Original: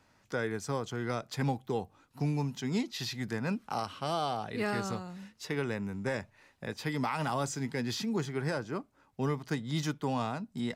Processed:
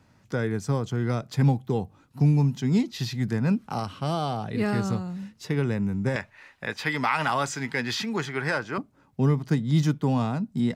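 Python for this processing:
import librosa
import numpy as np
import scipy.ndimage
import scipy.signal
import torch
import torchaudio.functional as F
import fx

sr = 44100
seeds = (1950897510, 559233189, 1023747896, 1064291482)

y = fx.peak_eq(x, sr, hz=fx.steps((0.0, 130.0), (6.16, 1900.0), (8.78, 150.0)), db=11.0, octaves=2.4)
y = y * 10.0 ** (1.5 / 20.0)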